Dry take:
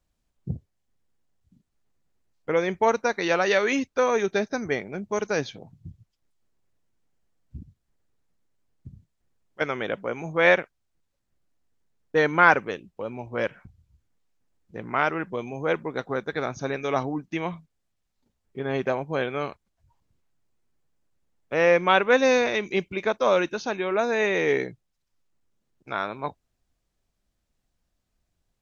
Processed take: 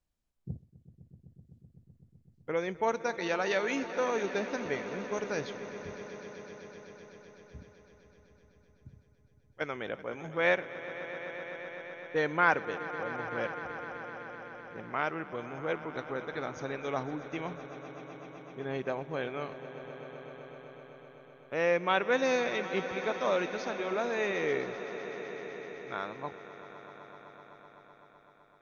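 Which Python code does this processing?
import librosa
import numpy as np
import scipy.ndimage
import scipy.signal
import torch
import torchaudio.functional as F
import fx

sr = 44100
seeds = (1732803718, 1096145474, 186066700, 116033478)

y = fx.echo_swell(x, sr, ms=127, loudest=5, wet_db=-16.5)
y = y * librosa.db_to_amplitude(-8.5)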